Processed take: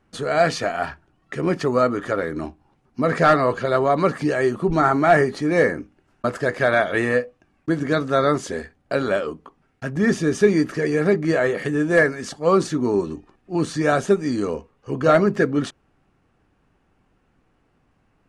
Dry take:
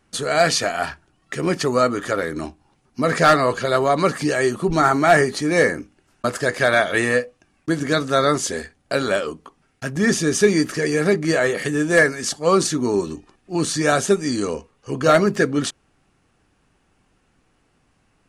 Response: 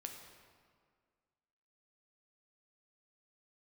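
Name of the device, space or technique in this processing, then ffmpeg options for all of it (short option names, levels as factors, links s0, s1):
through cloth: -af "highshelf=f=3500:g=-14.5"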